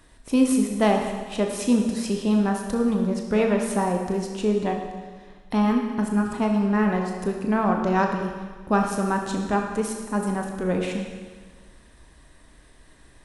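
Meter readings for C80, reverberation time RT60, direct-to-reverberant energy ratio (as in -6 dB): 6.0 dB, 1.5 s, 2.0 dB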